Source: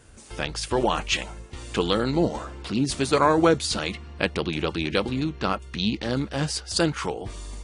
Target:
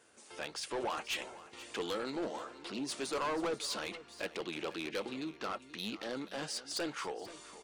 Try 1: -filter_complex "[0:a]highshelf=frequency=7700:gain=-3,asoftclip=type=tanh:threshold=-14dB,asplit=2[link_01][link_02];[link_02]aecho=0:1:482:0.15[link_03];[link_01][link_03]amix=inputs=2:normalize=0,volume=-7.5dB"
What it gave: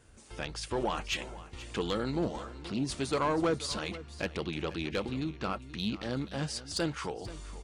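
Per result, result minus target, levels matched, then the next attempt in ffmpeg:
soft clipping: distortion −9 dB; 250 Hz band +2.5 dB
-filter_complex "[0:a]highshelf=frequency=7700:gain=-3,asoftclip=type=tanh:threshold=-23.5dB,asplit=2[link_01][link_02];[link_02]aecho=0:1:482:0.15[link_03];[link_01][link_03]amix=inputs=2:normalize=0,volume=-7.5dB"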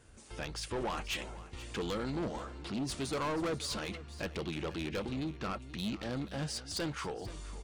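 250 Hz band +2.5 dB
-filter_complex "[0:a]highpass=350,highshelf=frequency=7700:gain=-3,asoftclip=type=tanh:threshold=-23.5dB,asplit=2[link_01][link_02];[link_02]aecho=0:1:482:0.15[link_03];[link_01][link_03]amix=inputs=2:normalize=0,volume=-7.5dB"

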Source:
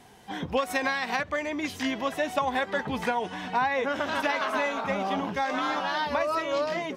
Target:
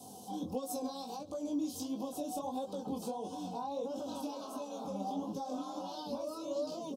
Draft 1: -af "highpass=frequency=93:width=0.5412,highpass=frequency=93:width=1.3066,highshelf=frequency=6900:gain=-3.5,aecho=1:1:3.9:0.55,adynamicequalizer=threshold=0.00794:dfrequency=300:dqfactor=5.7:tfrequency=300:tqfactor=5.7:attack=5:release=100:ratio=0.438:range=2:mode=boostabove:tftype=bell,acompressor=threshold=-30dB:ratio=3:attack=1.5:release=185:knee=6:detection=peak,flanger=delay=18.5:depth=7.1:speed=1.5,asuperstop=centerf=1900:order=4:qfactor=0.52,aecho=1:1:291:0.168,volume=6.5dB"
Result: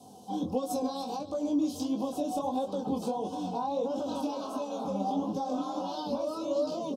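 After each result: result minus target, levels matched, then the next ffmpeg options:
downward compressor: peak gain reduction −7.5 dB; 8,000 Hz band −6.0 dB; echo-to-direct +8.5 dB
-af "highpass=frequency=93:width=0.5412,highpass=frequency=93:width=1.3066,highshelf=frequency=6900:gain=-3.5,aecho=1:1:3.9:0.55,adynamicequalizer=threshold=0.00794:dfrequency=300:dqfactor=5.7:tfrequency=300:tqfactor=5.7:attack=5:release=100:ratio=0.438:range=2:mode=boostabove:tftype=bell,acompressor=threshold=-40.5dB:ratio=3:attack=1.5:release=185:knee=6:detection=peak,flanger=delay=18.5:depth=7.1:speed=1.5,asuperstop=centerf=1900:order=4:qfactor=0.52,aecho=1:1:291:0.168,volume=6.5dB"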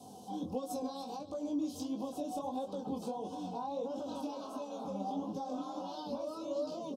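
echo-to-direct +8.5 dB; 8,000 Hz band −5.5 dB
-af "highpass=frequency=93:width=0.5412,highpass=frequency=93:width=1.3066,highshelf=frequency=6900:gain=-3.5,aecho=1:1:3.9:0.55,adynamicequalizer=threshold=0.00794:dfrequency=300:dqfactor=5.7:tfrequency=300:tqfactor=5.7:attack=5:release=100:ratio=0.438:range=2:mode=boostabove:tftype=bell,acompressor=threshold=-40.5dB:ratio=3:attack=1.5:release=185:knee=6:detection=peak,flanger=delay=18.5:depth=7.1:speed=1.5,asuperstop=centerf=1900:order=4:qfactor=0.52,aecho=1:1:291:0.0631,volume=6.5dB"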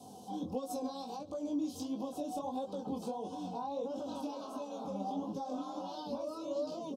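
8,000 Hz band −5.5 dB
-af "highpass=frequency=93:width=0.5412,highpass=frequency=93:width=1.3066,highshelf=frequency=6900:gain=8,aecho=1:1:3.9:0.55,adynamicequalizer=threshold=0.00794:dfrequency=300:dqfactor=5.7:tfrequency=300:tqfactor=5.7:attack=5:release=100:ratio=0.438:range=2:mode=boostabove:tftype=bell,acompressor=threshold=-40.5dB:ratio=3:attack=1.5:release=185:knee=6:detection=peak,flanger=delay=18.5:depth=7.1:speed=1.5,asuperstop=centerf=1900:order=4:qfactor=0.52,aecho=1:1:291:0.0631,volume=6.5dB"

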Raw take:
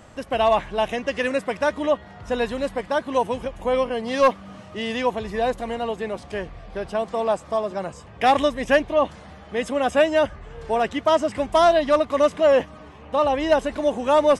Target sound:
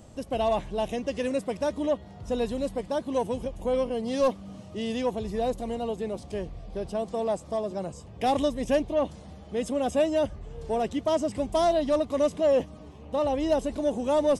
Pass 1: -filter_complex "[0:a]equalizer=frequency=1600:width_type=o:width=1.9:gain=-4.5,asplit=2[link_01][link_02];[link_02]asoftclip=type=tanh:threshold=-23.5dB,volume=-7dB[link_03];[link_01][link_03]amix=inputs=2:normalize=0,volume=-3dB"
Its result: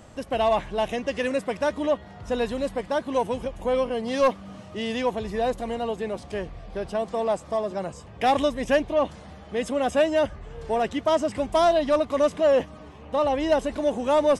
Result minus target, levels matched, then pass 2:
2,000 Hz band +6.0 dB
-filter_complex "[0:a]equalizer=frequency=1600:width_type=o:width=1.9:gain=-15,asplit=2[link_01][link_02];[link_02]asoftclip=type=tanh:threshold=-23.5dB,volume=-7dB[link_03];[link_01][link_03]amix=inputs=2:normalize=0,volume=-3dB"

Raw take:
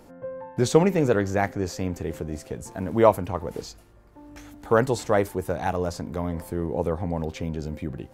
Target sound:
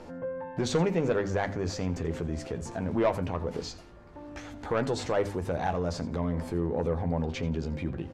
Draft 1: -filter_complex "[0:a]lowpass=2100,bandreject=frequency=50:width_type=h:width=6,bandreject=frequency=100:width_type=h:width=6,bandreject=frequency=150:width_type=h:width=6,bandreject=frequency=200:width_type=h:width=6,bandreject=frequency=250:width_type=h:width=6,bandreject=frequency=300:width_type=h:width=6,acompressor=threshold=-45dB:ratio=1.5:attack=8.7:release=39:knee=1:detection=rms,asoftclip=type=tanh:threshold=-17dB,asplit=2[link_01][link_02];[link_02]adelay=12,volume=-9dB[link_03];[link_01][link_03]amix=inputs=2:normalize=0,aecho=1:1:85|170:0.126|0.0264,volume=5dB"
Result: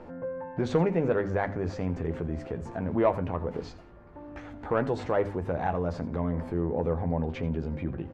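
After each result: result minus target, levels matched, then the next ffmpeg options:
4,000 Hz band −10.0 dB; soft clipping: distortion −8 dB
-filter_complex "[0:a]lowpass=5300,bandreject=frequency=50:width_type=h:width=6,bandreject=frequency=100:width_type=h:width=6,bandreject=frequency=150:width_type=h:width=6,bandreject=frequency=200:width_type=h:width=6,bandreject=frequency=250:width_type=h:width=6,bandreject=frequency=300:width_type=h:width=6,acompressor=threshold=-45dB:ratio=1.5:attack=8.7:release=39:knee=1:detection=rms,asoftclip=type=tanh:threshold=-17dB,asplit=2[link_01][link_02];[link_02]adelay=12,volume=-9dB[link_03];[link_01][link_03]amix=inputs=2:normalize=0,aecho=1:1:85|170:0.126|0.0264,volume=5dB"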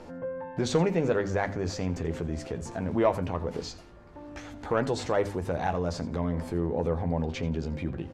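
soft clipping: distortion −8 dB
-filter_complex "[0:a]lowpass=5300,bandreject=frequency=50:width_type=h:width=6,bandreject=frequency=100:width_type=h:width=6,bandreject=frequency=150:width_type=h:width=6,bandreject=frequency=200:width_type=h:width=6,bandreject=frequency=250:width_type=h:width=6,bandreject=frequency=300:width_type=h:width=6,acompressor=threshold=-45dB:ratio=1.5:attack=8.7:release=39:knee=1:detection=rms,asoftclip=type=tanh:threshold=-23dB,asplit=2[link_01][link_02];[link_02]adelay=12,volume=-9dB[link_03];[link_01][link_03]amix=inputs=2:normalize=0,aecho=1:1:85|170:0.126|0.0264,volume=5dB"

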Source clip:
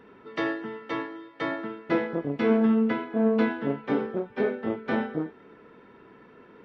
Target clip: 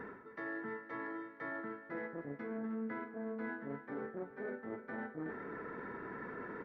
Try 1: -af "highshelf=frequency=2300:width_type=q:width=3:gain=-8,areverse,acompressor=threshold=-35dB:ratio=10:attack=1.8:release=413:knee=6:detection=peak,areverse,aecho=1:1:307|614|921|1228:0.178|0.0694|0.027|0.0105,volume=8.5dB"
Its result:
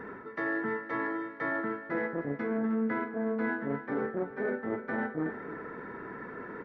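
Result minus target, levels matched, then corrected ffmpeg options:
downward compressor: peak gain reduction −10.5 dB
-af "highshelf=frequency=2300:width_type=q:width=3:gain=-8,areverse,acompressor=threshold=-46.5dB:ratio=10:attack=1.8:release=413:knee=6:detection=peak,areverse,aecho=1:1:307|614|921|1228:0.178|0.0694|0.027|0.0105,volume=8.5dB"

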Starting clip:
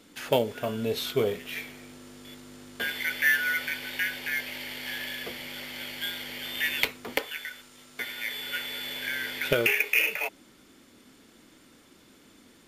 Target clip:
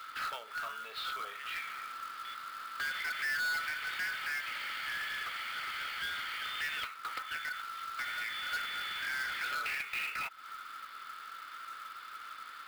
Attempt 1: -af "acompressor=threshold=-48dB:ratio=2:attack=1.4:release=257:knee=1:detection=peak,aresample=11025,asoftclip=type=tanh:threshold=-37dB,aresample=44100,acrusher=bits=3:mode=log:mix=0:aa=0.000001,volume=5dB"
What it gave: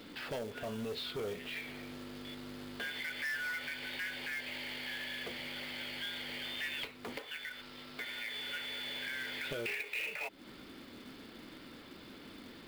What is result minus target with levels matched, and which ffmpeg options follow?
1,000 Hz band −9.0 dB
-af "acompressor=threshold=-48dB:ratio=2:attack=1.4:release=257:knee=1:detection=peak,highpass=frequency=1300:width_type=q:width=13,aresample=11025,asoftclip=type=tanh:threshold=-37dB,aresample=44100,acrusher=bits=3:mode=log:mix=0:aa=0.000001,volume=5dB"

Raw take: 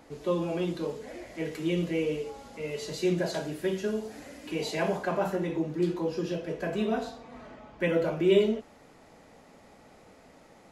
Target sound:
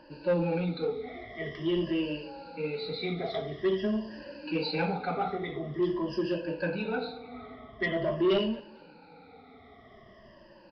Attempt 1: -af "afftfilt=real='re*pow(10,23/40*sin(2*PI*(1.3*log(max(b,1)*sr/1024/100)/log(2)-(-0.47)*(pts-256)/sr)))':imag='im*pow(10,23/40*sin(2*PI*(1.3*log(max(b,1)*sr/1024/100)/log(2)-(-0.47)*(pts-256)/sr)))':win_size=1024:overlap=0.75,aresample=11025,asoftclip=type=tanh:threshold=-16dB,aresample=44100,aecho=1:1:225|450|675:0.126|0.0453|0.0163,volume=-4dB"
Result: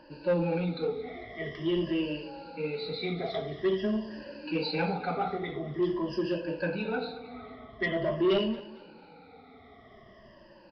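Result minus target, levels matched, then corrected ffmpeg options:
echo-to-direct +6 dB
-af "afftfilt=real='re*pow(10,23/40*sin(2*PI*(1.3*log(max(b,1)*sr/1024/100)/log(2)-(-0.47)*(pts-256)/sr)))':imag='im*pow(10,23/40*sin(2*PI*(1.3*log(max(b,1)*sr/1024/100)/log(2)-(-0.47)*(pts-256)/sr)))':win_size=1024:overlap=0.75,aresample=11025,asoftclip=type=tanh:threshold=-16dB,aresample=44100,aecho=1:1:225|450:0.0631|0.0227,volume=-4dB"

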